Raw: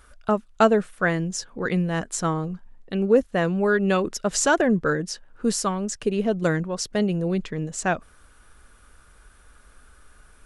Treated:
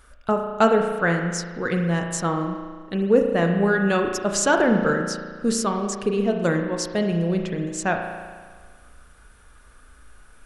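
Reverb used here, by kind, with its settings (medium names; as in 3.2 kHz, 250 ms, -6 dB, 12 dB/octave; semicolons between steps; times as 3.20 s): spring tank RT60 1.6 s, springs 35 ms, chirp 45 ms, DRR 3.5 dB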